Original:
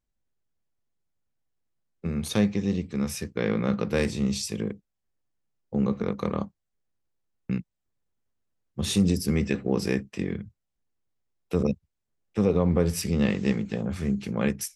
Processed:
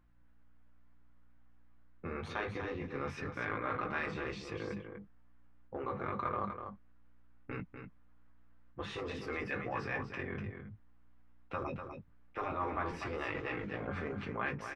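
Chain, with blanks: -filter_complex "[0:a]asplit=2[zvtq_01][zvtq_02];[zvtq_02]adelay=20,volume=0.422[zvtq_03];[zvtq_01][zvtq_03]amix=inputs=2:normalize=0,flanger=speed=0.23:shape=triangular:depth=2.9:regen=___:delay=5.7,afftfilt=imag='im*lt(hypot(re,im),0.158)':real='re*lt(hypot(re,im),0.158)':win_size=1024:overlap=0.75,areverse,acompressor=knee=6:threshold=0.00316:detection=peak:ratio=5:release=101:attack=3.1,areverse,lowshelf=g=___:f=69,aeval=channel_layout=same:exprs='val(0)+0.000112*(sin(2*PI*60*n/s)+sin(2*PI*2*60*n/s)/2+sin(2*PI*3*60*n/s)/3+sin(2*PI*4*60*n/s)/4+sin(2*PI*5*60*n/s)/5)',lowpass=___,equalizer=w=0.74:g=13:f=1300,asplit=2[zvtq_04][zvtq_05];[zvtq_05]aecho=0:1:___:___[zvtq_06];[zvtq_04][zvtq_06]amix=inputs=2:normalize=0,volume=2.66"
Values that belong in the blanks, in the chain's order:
-23, 6, 2600, 246, 0.422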